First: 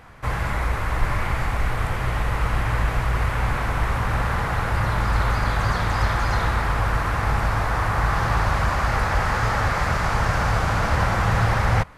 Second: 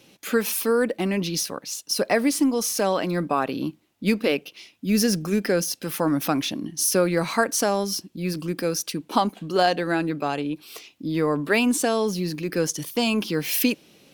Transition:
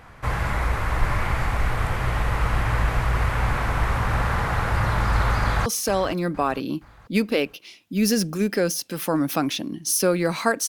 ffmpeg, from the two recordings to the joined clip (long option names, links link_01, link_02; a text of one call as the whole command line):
ffmpeg -i cue0.wav -i cue1.wav -filter_complex "[0:a]apad=whole_dur=10.68,atrim=end=10.68,atrim=end=5.662[link_01];[1:a]atrim=start=2.578:end=7.6[link_02];[link_01][link_02]acrossfade=duration=0.004:curve1=hsin:curve2=hsin,asplit=2[link_03][link_04];[link_04]afade=type=in:start_time=5.4:duration=0.01,afade=type=out:start_time=5.66:duration=0.01,aecho=0:1:470|940|1410|1880:0.199526|0.0897868|0.0404041|0.0181818[link_05];[link_03][link_05]amix=inputs=2:normalize=0" out.wav